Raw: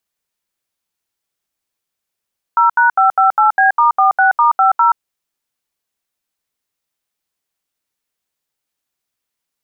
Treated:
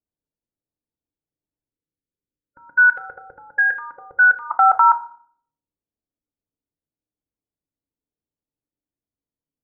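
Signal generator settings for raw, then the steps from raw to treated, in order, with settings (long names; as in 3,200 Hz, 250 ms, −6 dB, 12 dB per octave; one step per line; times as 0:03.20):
touch tones "0#558B*46*50", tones 127 ms, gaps 75 ms, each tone −10.5 dBFS
gain on a spectral selection 0:01.70–0:04.51, 570–1,400 Hz −24 dB
low-pass that shuts in the quiet parts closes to 380 Hz, open at −12.5 dBFS
feedback delay network reverb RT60 0.52 s, low-frequency decay 1.5×, high-frequency decay 0.45×, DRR 8 dB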